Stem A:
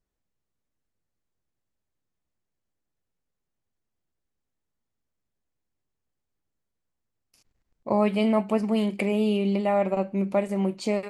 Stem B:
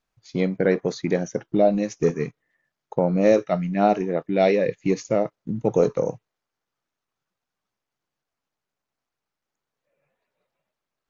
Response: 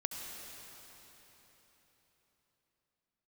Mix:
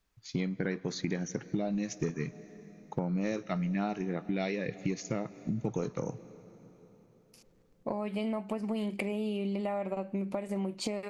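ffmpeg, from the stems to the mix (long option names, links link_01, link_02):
-filter_complex "[0:a]acompressor=threshold=-32dB:ratio=6,volume=3dB[link_01];[1:a]equalizer=frequency=560:width=1.2:gain=-11.5,volume=0.5dB,asplit=2[link_02][link_03];[link_03]volume=-19dB[link_04];[2:a]atrim=start_sample=2205[link_05];[link_04][link_05]afir=irnorm=-1:irlink=0[link_06];[link_01][link_02][link_06]amix=inputs=3:normalize=0,acompressor=threshold=-29dB:ratio=6"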